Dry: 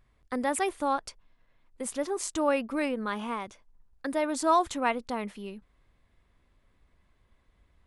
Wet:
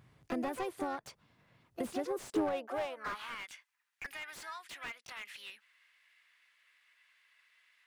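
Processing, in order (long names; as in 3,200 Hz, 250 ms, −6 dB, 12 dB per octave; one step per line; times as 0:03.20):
downward compressor 10 to 1, threshold −38 dBFS, peak gain reduction 19.5 dB
high-pass filter sweep 120 Hz → 1,900 Hz, 0:01.94–0:03.36
pitch-shifted copies added +5 semitones −6 dB
slew-rate limiting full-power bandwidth 15 Hz
level +3.5 dB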